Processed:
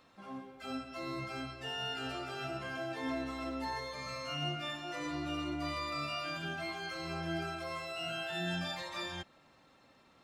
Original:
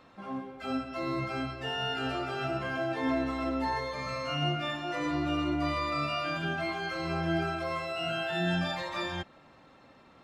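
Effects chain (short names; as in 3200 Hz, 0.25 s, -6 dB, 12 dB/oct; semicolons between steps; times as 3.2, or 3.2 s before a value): high shelf 3800 Hz +11 dB; gain -8 dB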